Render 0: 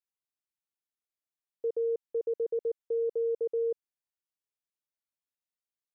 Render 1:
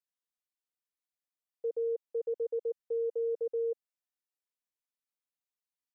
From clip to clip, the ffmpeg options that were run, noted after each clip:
ffmpeg -i in.wav -af "highpass=260,aecho=1:1:4:0.7,volume=-5.5dB" out.wav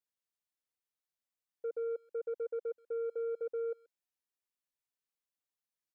ffmpeg -i in.wav -filter_complex "[0:a]asoftclip=type=tanh:threshold=-29dB,asplit=2[link_01][link_02];[link_02]adelay=130,highpass=300,lowpass=3400,asoftclip=type=hard:threshold=-39dB,volume=-22dB[link_03];[link_01][link_03]amix=inputs=2:normalize=0,volume=-2dB" out.wav

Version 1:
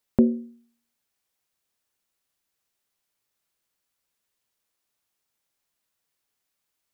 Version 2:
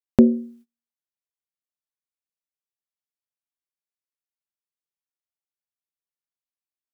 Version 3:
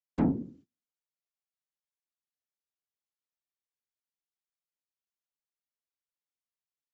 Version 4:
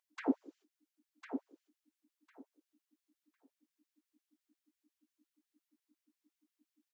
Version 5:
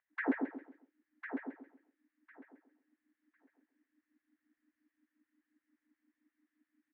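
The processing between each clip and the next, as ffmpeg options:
ffmpeg -i in.wav -af "agate=range=-26dB:threshold=-53dB:ratio=16:detection=peak,volume=5dB" out.wav
ffmpeg -i in.wav -af "aresample=16000,asoftclip=type=tanh:threshold=-17dB,aresample=44100,afftfilt=real='hypot(re,im)*cos(2*PI*random(0))':imag='hypot(re,im)*sin(2*PI*random(1))':win_size=512:overlap=0.75" out.wav
ffmpeg -i in.wav -af "aecho=1:1:1052|2104|3156:0.422|0.0717|0.0122,aeval=exprs='val(0)+0.00112*(sin(2*PI*60*n/s)+sin(2*PI*2*60*n/s)/2+sin(2*PI*3*60*n/s)/3+sin(2*PI*4*60*n/s)/4+sin(2*PI*5*60*n/s)/5)':channel_layout=same,afftfilt=real='re*gte(b*sr/1024,250*pow(1600/250,0.5+0.5*sin(2*PI*5.7*pts/sr)))':imag='im*gte(b*sr/1024,250*pow(1600/250,0.5+0.5*sin(2*PI*5.7*pts/sr)))':win_size=1024:overlap=0.75,volume=3.5dB" out.wav
ffmpeg -i in.wav -af "lowpass=frequency=1800:width_type=q:width=5.5,aecho=1:1:134|268|402|536:0.562|0.169|0.0506|0.0152,volume=-1dB" out.wav

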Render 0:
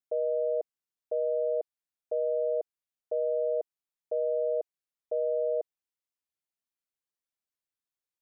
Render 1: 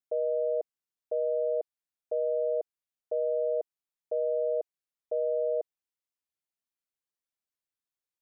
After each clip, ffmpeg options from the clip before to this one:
ffmpeg -i in.wav -af anull out.wav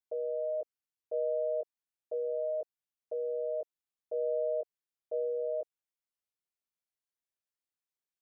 ffmpeg -i in.wav -af "flanger=delay=17:depth=2.4:speed=0.32,volume=-1.5dB" out.wav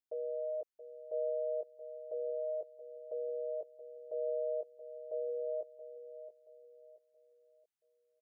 ffmpeg -i in.wav -af "aecho=1:1:676|1352|2028|2704:0.251|0.0879|0.0308|0.0108,volume=-4dB" out.wav

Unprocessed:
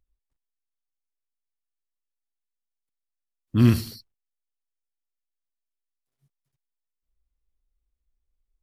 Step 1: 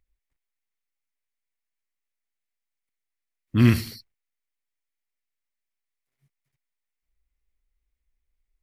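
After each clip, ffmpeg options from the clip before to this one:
ffmpeg -i in.wav -af "equalizer=frequency=2100:width=2.2:gain=10.5" out.wav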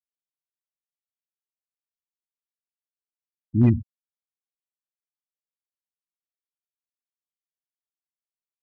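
ffmpeg -i in.wav -af "afftfilt=real='re*gte(hypot(re,im),0.178)':imag='im*gte(hypot(re,im),0.178)':win_size=1024:overlap=0.75,asoftclip=type=hard:threshold=-9.5dB" out.wav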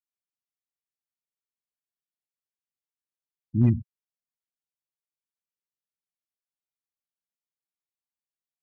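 ffmpeg -i in.wav -af "equalizer=frequency=150:width=1.2:gain=7,volume=-7dB" out.wav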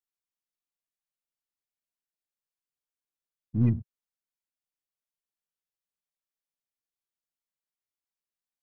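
ffmpeg -i in.wav -af "aeval=exprs='if(lt(val(0),0),0.708*val(0),val(0))':channel_layout=same,volume=-1.5dB" out.wav

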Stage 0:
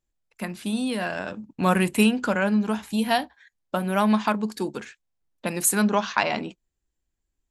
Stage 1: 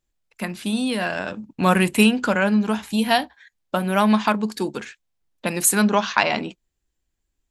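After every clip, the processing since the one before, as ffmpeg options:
ffmpeg -i in.wav -af "equalizer=frequency=3200:width=0.67:gain=2.5,volume=3dB" out.wav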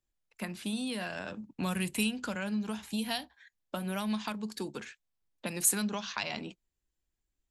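ffmpeg -i in.wav -filter_complex "[0:a]acrossover=split=160|3000[link_01][link_02][link_03];[link_02]acompressor=threshold=-27dB:ratio=6[link_04];[link_01][link_04][link_03]amix=inputs=3:normalize=0,volume=-8dB" out.wav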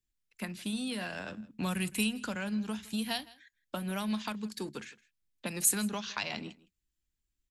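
ffmpeg -i in.wav -filter_complex "[0:a]acrossover=split=390|1300[link_01][link_02][link_03];[link_02]aeval=exprs='sgn(val(0))*max(abs(val(0))-0.002,0)':channel_layout=same[link_04];[link_01][link_04][link_03]amix=inputs=3:normalize=0,aecho=1:1:162:0.0841" out.wav

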